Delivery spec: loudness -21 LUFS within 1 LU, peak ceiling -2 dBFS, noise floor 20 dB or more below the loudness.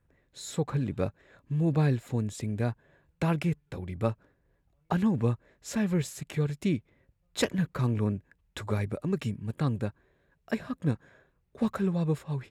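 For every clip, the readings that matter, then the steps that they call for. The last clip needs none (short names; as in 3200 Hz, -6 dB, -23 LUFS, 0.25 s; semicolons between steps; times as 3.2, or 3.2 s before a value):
loudness -31.0 LUFS; peak -9.5 dBFS; loudness target -21.0 LUFS
-> gain +10 dB; limiter -2 dBFS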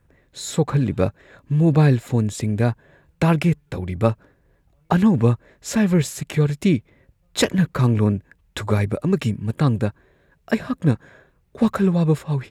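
loudness -21.0 LUFS; peak -2.0 dBFS; noise floor -62 dBFS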